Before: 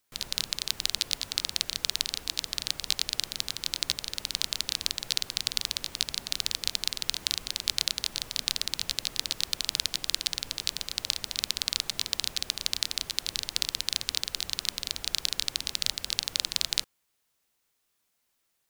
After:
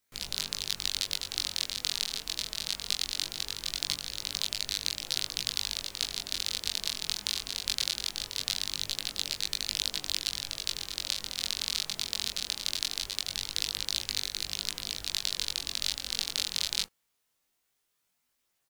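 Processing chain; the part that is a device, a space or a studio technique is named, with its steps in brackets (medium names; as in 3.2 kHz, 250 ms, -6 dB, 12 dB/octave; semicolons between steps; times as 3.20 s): double-tracked vocal (doubling 20 ms -5 dB; chorus 0.21 Hz, delay 19.5 ms, depth 5.2 ms)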